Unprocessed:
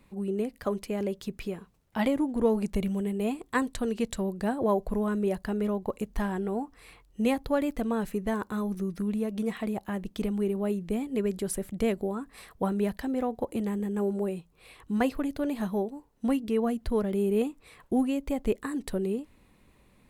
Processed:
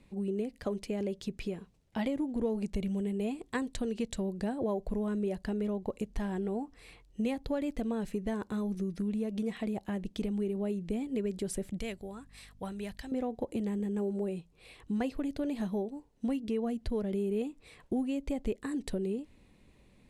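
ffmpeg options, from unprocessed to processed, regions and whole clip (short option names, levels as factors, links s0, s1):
-filter_complex "[0:a]asettb=1/sr,asplit=3[s0][s1][s2];[s0]atrim=end=11.794[s3];[s1]atrim=start=11.79:end=13.12,asetpts=PTS-STARTPTS,afade=t=in:d=0.004:c=qsin,afade=t=out:st=1.326:d=0.004:c=qsin,equalizer=f=310:w=0.4:g=-13,aeval=exprs='val(0)+0.00126*(sin(2*PI*50*n/s)+sin(2*PI*2*50*n/s)/2+sin(2*PI*3*50*n/s)/3+sin(2*PI*4*50*n/s)/4+sin(2*PI*5*50*n/s)/5)':c=same[s4];[s2]atrim=start=13.116[s5];[s3][s4]acrossfade=d=0.004:c1=hsin:c2=qsin[s6];[s6][s5]acrossfade=d=0.004:c1=qsin:c2=hsin,lowpass=8400,equalizer=f=1200:t=o:w=1.1:g=-7.5,acompressor=threshold=0.0282:ratio=2.5"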